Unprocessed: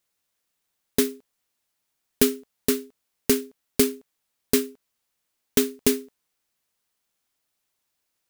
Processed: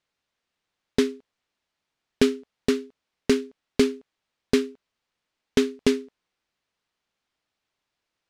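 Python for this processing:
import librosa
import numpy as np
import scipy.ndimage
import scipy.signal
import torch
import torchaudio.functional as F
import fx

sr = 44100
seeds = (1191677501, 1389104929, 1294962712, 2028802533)

y = scipy.signal.sosfilt(scipy.signal.butter(2, 4200.0, 'lowpass', fs=sr, output='sos'), x)
y = y * 10.0 ** (1.5 / 20.0)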